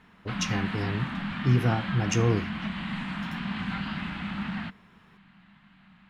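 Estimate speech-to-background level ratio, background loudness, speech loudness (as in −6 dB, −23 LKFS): 4.5 dB, −33.0 LKFS, −28.5 LKFS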